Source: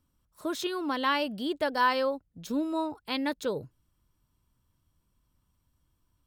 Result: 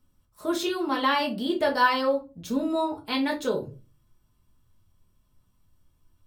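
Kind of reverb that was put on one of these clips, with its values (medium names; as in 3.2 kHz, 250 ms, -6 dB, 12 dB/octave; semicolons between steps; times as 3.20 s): simulated room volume 120 m³, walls furnished, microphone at 1.4 m; trim +1 dB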